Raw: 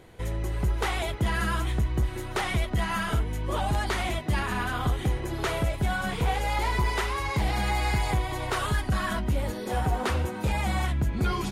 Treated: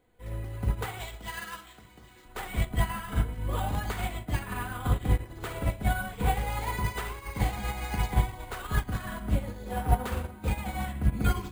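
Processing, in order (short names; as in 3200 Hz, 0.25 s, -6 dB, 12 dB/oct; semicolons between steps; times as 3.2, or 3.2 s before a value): 1–2.25 RIAA curve recording; reverb RT60 0.80 s, pre-delay 4 ms, DRR 3.5 dB; careless resampling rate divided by 4×, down filtered, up hold; upward expander 2.5:1, over -31 dBFS; gain +2 dB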